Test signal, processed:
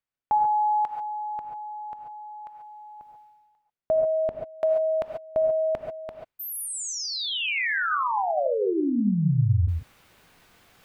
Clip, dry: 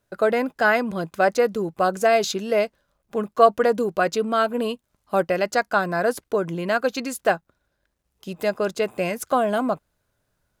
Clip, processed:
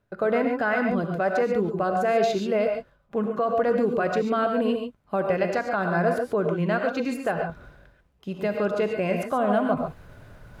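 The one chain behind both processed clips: tone controls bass +4 dB, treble -14 dB; peak limiter -14 dBFS; reverse; upward compressor, threshold -26 dBFS; reverse; gated-style reverb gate 160 ms rising, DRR 3 dB; trim -2 dB

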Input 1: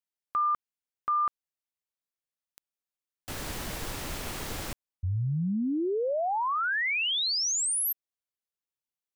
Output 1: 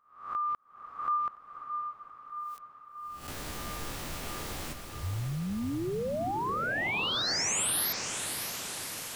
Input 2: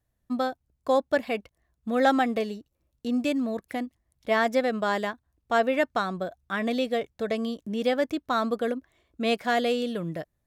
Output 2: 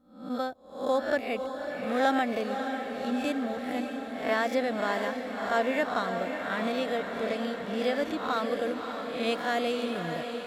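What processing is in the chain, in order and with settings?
reverse spectral sustain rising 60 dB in 0.52 s; echo that smears into a reverb 586 ms, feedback 70%, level -7 dB; trim -5 dB

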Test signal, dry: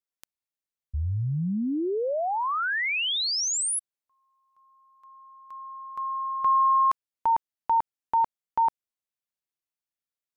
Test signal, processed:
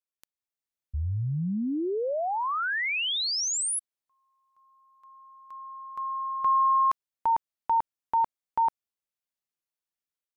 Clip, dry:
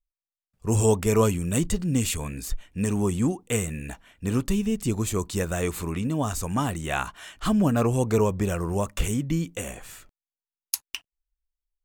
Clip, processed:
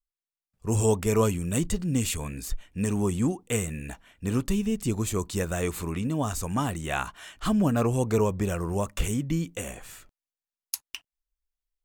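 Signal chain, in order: level rider gain up to 5 dB; trim -6.5 dB

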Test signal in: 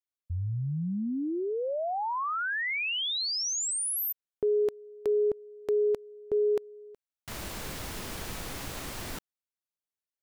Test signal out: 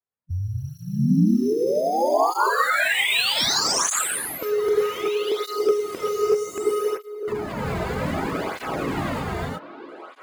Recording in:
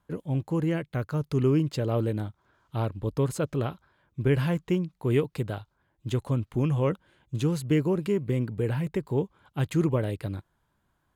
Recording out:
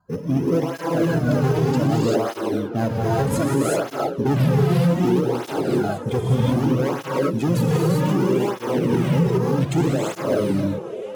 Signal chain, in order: coarse spectral quantiser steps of 30 dB; level-controlled noise filter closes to 1.4 kHz, open at -25 dBFS; treble shelf 8.7 kHz +6.5 dB; in parallel at -6.5 dB: sample-rate reducer 5.7 kHz, jitter 0%; on the sum: hard clipper -22 dBFS; on a send: repeats whose band climbs or falls 652 ms, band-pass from 440 Hz, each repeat 1.4 oct, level -8.5 dB; on the sum: gated-style reverb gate 410 ms rising, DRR -5.5 dB; peak limiter -15 dBFS; cancelling through-zero flanger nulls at 0.64 Hz, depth 3.7 ms; trim +6.5 dB

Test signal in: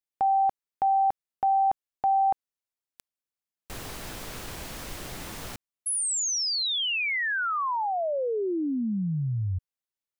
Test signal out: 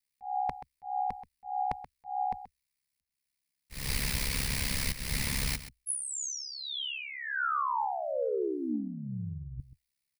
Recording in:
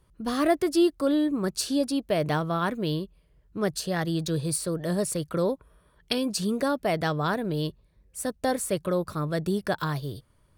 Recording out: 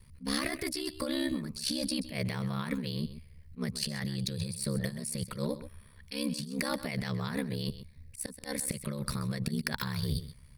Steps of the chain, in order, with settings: rippled EQ curve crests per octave 0.9, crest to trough 7 dB; slow attack 231 ms; high-order bell 580 Hz -11.5 dB 2.6 oct; compressor with a negative ratio -37 dBFS, ratio -1; ring modulator 34 Hz; on a send: delay 130 ms -13.5 dB; on the sum: trim +6 dB

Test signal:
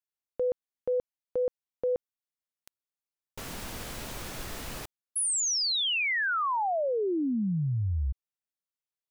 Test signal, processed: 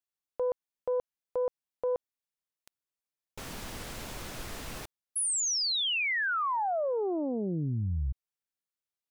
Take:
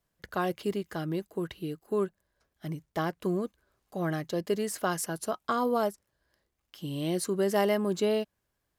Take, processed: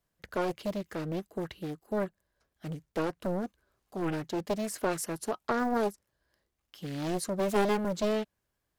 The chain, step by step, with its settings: loudspeaker Doppler distortion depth 0.91 ms; trim -1.5 dB

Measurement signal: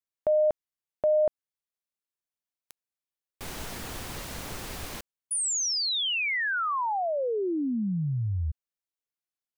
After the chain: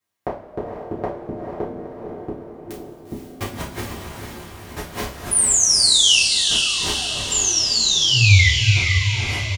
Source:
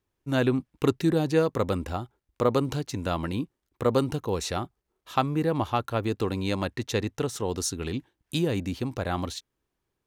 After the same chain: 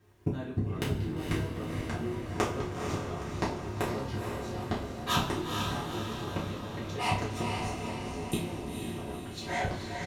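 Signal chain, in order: fade out at the end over 2.04 s; high-pass 48 Hz 12 dB/octave; treble shelf 3.6 kHz -7.5 dB; in parallel at +2 dB: compression 16:1, threshold -34 dBFS; on the sum: inverted gate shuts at -23 dBFS, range -29 dB; ever faster or slower copies 218 ms, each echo -5 st, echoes 3; doubling 31 ms -7.5 dB; on a send: echo that smears into a reverb 471 ms, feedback 55%, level -4 dB; on the sum: two-slope reverb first 0.3 s, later 2 s, from -17 dB, DRR -7 dB; trim +3.5 dB

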